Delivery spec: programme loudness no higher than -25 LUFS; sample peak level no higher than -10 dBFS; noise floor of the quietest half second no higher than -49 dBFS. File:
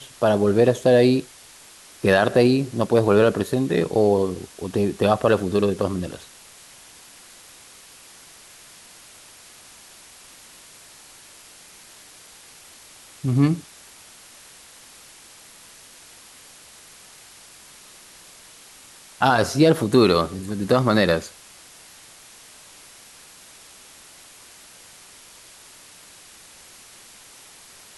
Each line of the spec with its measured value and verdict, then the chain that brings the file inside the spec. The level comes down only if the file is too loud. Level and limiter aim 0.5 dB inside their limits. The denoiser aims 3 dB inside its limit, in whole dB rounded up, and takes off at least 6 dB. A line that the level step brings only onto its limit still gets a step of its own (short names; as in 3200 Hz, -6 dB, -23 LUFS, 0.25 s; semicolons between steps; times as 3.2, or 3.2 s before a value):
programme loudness -20.0 LUFS: fail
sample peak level -5.0 dBFS: fail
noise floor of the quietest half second -47 dBFS: fail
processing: gain -5.5 dB